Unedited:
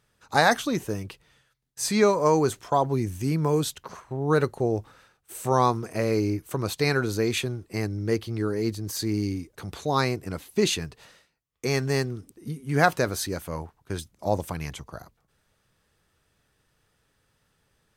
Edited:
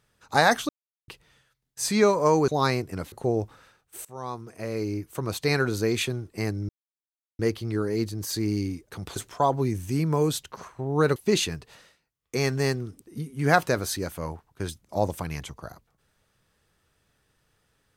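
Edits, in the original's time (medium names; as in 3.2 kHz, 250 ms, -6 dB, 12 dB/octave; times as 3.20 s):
0.69–1.08 s: mute
2.48–4.48 s: swap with 9.82–10.46 s
5.41–6.92 s: fade in, from -23 dB
8.05 s: insert silence 0.70 s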